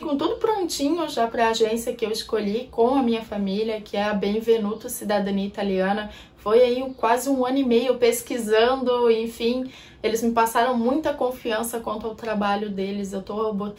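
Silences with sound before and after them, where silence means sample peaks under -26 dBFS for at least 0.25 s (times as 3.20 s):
6.07–6.46 s
9.63–10.04 s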